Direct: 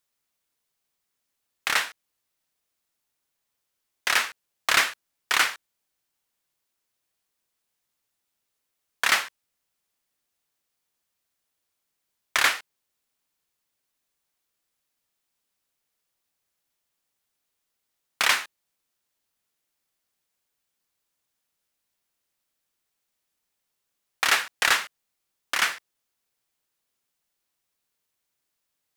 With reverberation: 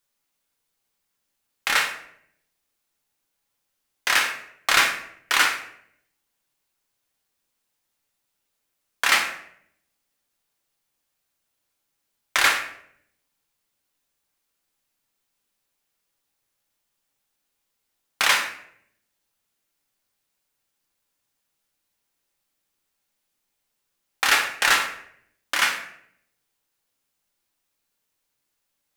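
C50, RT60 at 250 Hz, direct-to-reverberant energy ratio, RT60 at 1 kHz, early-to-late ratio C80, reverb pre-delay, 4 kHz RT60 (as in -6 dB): 8.0 dB, 0.90 s, 2.5 dB, 0.60 s, 11.0 dB, 4 ms, 0.50 s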